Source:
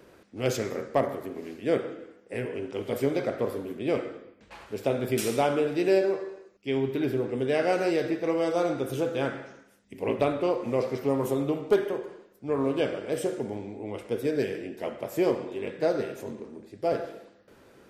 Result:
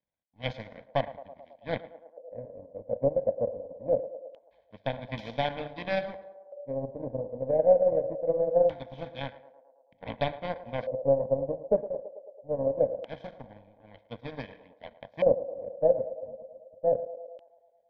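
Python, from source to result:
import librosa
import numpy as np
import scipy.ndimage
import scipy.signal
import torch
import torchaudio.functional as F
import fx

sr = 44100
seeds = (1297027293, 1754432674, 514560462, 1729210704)

p1 = fx.power_curve(x, sr, exponent=2.0)
p2 = fx.tilt_shelf(p1, sr, db=4.5, hz=1100.0)
p3 = fx.fixed_phaser(p2, sr, hz=1900.0, stages=8)
p4 = p3 + fx.echo_banded(p3, sr, ms=109, feedback_pct=73, hz=590.0, wet_db=-14.0, dry=0)
y = fx.filter_lfo_lowpass(p4, sr, shape='square', hz=0.23, low_hz=540.0, high_hz=3100.0, q=6.4)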